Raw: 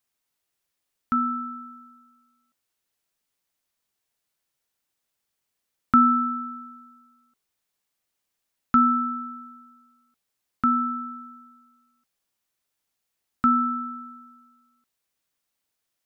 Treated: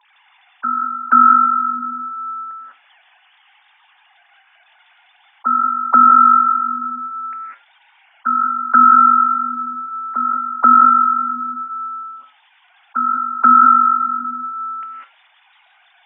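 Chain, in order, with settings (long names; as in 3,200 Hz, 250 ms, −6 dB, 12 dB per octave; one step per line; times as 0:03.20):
three sine waves on the formant tracks
high-pass filter 240 Hz
low-shelf EQ 370 Hz −10.5 dB
flanger 0.53 Hz, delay 7.9 ms, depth 2.1 ms, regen −78%
dynamic equaliser 2,000 Hz, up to +3 dB, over −40 dBFS, Q 1
on a send: backwards echo 484 ms −23 dB
on the sum: reverb whose tail is shaped and stops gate 220 ms rising, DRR 2 dB
boost into a limiter +21.5 dB
envelope flattener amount 50%
level −2 dB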